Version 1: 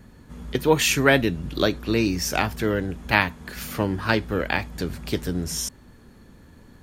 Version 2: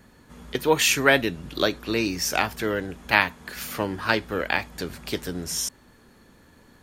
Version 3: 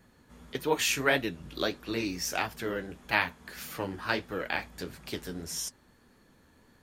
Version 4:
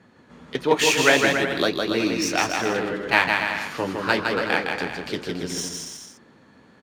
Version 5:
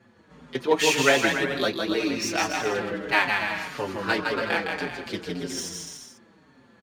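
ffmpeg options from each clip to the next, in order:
ffmpeg -i in.wav -af "lowshelf=frequency=270:gain=-10.5,volume=1dB" out.wav
ffmpeg -i in.wav -af "flanger=delay=6:depth=10:regen=-40:speed=1.6:shape=sinusoidal,volume=-3.5dB" out.wav
ffmpeg -i in.wav -af "highpass=130,adynamicsmooth=sensitivity=6.5:basefreq=5000,aecho=1:1:160|280|370|437.5|488.1:0.631|0.398|0.251|0.158|0.1,volume=8dB" out.wav
ffmpeg -i in.wav -filter_complex "[0:a]asplit=2[link_01][link_02];[link_02]adelay=5.3,afreqshift=-1.8[link_03];[link_01][link_03]amix=inputs=2:normalize=1" out.wav

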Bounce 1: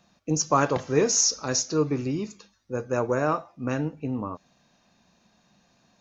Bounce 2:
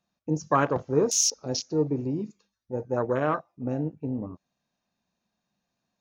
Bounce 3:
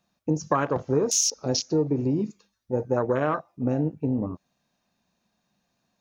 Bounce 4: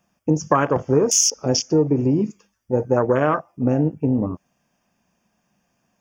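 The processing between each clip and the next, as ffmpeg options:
ffmpeg -i in.wav -af "afwtdn=0.0355,volume=-1dB" out.wav
ffmpeg -i in.wav -af "acompressor=threshold=-26dB:ratio=6,volume=6.5dB" out.wav
ffmpeg -i in.wav -af "asuperstop=centerf=4000:order=4:qfactor=3,volume=6dB" out.wav

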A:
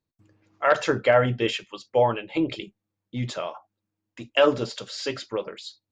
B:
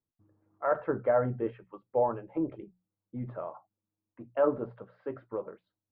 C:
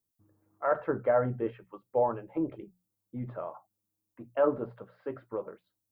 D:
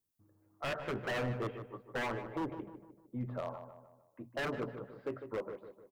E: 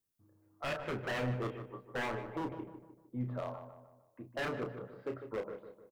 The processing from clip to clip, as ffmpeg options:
ffmpeg -i in.wav -af "lowpass=frequency=1300:width=0.5412,lowpass=frequency=1300:width=1.3066,bandreject=frequency=60:width_type=h:width=6,bandreject=frequency=120:width_type=h:width=6,bandreject=frequency=180:width_type=h:width=6,volume=-6.5dB" out.wav
ffmpeg -i in.wav -af "crystalizer=i=2:c=0" out.wav
ffmpeg -i in.wav -filter_complex "[0:a]alimiter=limit=-19.5dB:level=0:latency=1:release=108,aeval=exprs='0.0376*(abs(mod(val(0)/0.0376+3,4)-2)-1)':channel_layout=same,asplit=2[link_01][link_02];[link_02]adelay=152,lowpass=frequency=1800:poles=1,volume=-9dB,asplit=2[link_03][link_04];[link_04]adelay=152,lowpass=frequency=1800:poles=1,volume=0.48,asplit=2[link_05][link_06];[link_06]adelay=152,lowpass=frequency=1800:poles=1,volume=0.48,asplit=2[link_07][link_08];[link_08]adelay=152,lowpass=frequency=1800:poles=1,volume=0.48,asplit=2[link_09][link_10];[link_10]adelay=152,lowpass=frequency=1800:poles=1,volume=0.48[link_11];[link_01][link_03][link_05][link_07][link_09][link_11]amix=inputs=6:normalize=0,volume=-1.5dB" out.wav
ffmpeg -i in.wav -filter_complex "[0:a]asplit=2[link_01][link_02];[link_02]adelay=32,volume=-6.5dB[link_03];[link_01][link_03]amix=inputs=2:normalize=0,volume=-1dB" out.wav

